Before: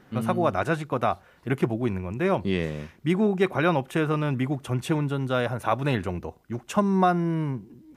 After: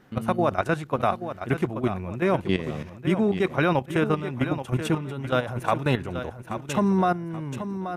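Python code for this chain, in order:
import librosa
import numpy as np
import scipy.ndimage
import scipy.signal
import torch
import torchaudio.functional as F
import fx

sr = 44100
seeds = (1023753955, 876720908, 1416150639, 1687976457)

y = fx.level_steps(x, sr, step_db=12)
y = fx.echo_feedback(y, sr, ms=830, feedback_pct=30, wet_db=-10)
y = y * 10.0 ** (3.5 / 20.0)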